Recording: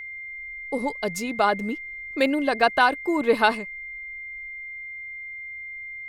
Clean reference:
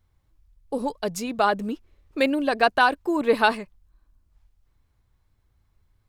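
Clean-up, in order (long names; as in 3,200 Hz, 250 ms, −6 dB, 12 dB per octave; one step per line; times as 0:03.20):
notch filter 2,100 Hz, Q 30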